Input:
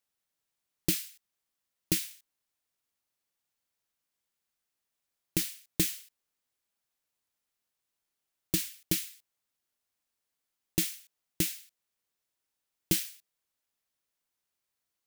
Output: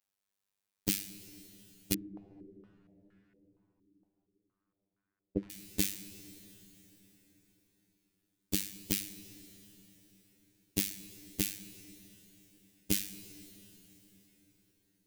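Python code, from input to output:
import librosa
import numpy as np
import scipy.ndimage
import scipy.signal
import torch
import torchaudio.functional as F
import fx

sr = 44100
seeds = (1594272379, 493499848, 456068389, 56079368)

y = fx.robotise(x, sr, hz=98.8)
y = fx.rev_plate(y, sr, seeds[0], rt60_s=4.9, hf_ratio=0.8, predelay_ms=0, drr_db=12.0)
y = fx.filter_held_lowpass(y, sr, hz=4.3, low_hz=320.0, high_hz=1500.0, at=(1.94, 5.5))
y = y * 10.0 ** (-1.0 / 20.0)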